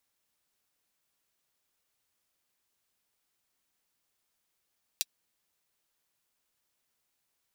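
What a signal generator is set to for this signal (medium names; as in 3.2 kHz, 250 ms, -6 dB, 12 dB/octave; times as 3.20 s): closed hi-hat, high-pass 3.6 kHz, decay 0.04 s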